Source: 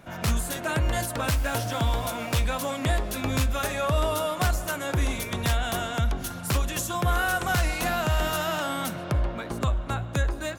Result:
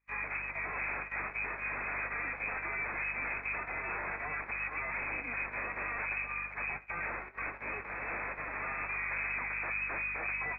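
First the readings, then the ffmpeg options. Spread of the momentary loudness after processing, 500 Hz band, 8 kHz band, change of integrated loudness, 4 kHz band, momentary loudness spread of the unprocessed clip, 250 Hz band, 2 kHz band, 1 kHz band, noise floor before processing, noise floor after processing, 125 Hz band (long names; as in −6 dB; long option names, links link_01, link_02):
4 LU, −16.5 dB, below −40 dB, −8.5 dB, below −40 dB, 4 LU, −20.0 dB, −1.5 dB, −10.5 dB, −36 dBFS, −46 dBFS, −25.0 dB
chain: -af "aeval=exprs='0.0299*(abs(mod(val(0)/0.0299+3,4)-2)-1)':channel_layout=same,lowpass=frequency=2200:width_type=q:width=0.5098,lowpass=frequency=2200:width_type=q:width=0.6013,lowpass=frequency=2200:width_type=q:width=0.9,lowpass=frequency=2200:width_type=q:width=2.563,afreqshift=-2600,bandreject=frequency=187.8:width_type=h:width=4,bandreject=frequency=375.6:width_type=h:width=4,bandreject=frequency=563.4:width_type=h:width=4,bandreject=frequency=751.2:width_type=h:width=4,bandreject=frequency=939:width_type=h:width=4,bandreject=frequency=1126.8:width_type=h:width=4,bandreject=frequency=1314.6:width_type=h:width=4,bandreject=frequency=1502.4:width_type=h:width=4,bandreject=frequency=1690.2:width_type=h:width=4,aeval=exprs='val(0)+0.00282*(sin(2*PI*50*n/s)+sin(2*PI*2*50*n/s)/2+sin(2*PI*3*50*n/s)/3+sin(2*PI*4*50*n/s)/4+sin(2*PI*5*50*n/s)/5)':channel_layout=same,agate=range=-35dB:threshold=-38dB:ratio=16:detection=peak"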